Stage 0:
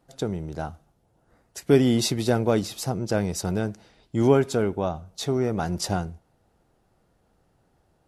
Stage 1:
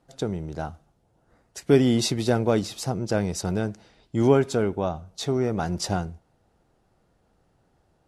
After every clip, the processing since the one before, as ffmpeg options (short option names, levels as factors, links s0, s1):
-af "lowpass=10000"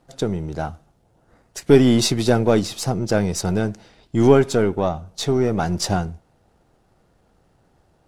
-af "aeval=exprs='if(lt(val(0),0),0.708*val(0),val(0))':c=same,volume=2.24"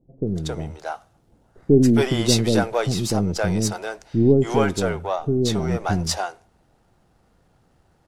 -filter_complex "[0:a]acrossover=split=480[s0][s1];[s1]adelay=270[s2];[s0][s2]amix=inputs=2:normalize=0"